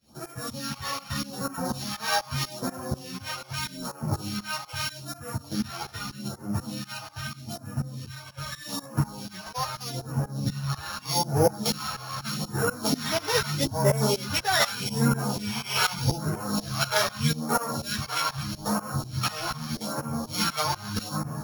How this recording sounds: a buzz of ramps at a fixed pitch in blocks of 8 samples; phasing stages 2, 0.81 Hz, lowest notch 220–3500 Hz; tremolo saw up 4.1 Hz, depth 95%; a shimmering, thickened sound

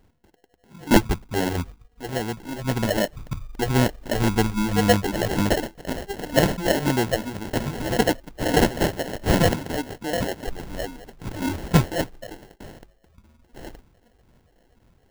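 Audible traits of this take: phasing stages 6, 1.9 Hz, lowest notch 110–1400 Hz; aliases and images of a low sample rate 1.2 kHz, jitter 0%

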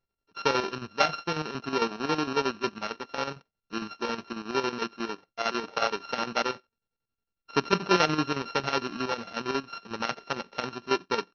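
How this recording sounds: a buzz of ramps at a fixed pitch in blocks of 32 samples; chopped level 11 Hz, depth 60%, duty 60%; AC-3

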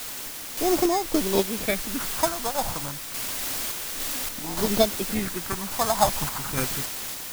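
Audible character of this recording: aliases and images of a low sample rate 2.9 kHz, jitter 0%; phasing stages 4, 0.29 Hz, lowest notch 360–2800 Hz; a quantiser's noise floor 6-bit, dither triangular; random-step tremolo

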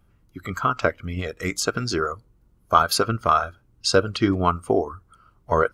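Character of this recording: noise floor -61 dBFS; spectral tilt -4.5 dB/octave

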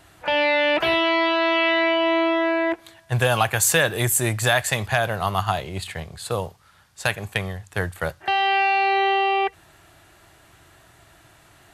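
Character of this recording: noise floor -54 dBFS; spectral tilt -3.5 dB/octave

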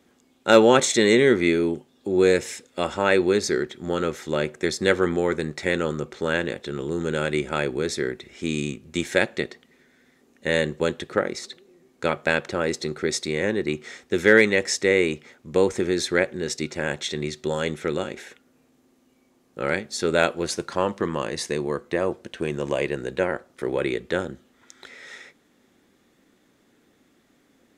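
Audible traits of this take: noise floor -63 dBFS; spectral tilt -4.0 dB/octave

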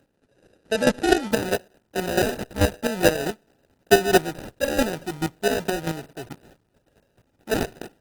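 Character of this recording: aliases and images of a low sample rate 1.1 kHz, jitter 0%; chopped level 4.6 Hz, depth 65%, duty 20%; Opus

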